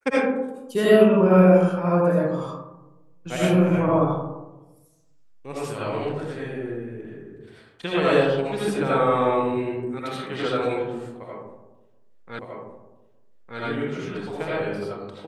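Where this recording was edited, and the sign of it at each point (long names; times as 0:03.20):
0:12.39: the same again, the last 1.21 s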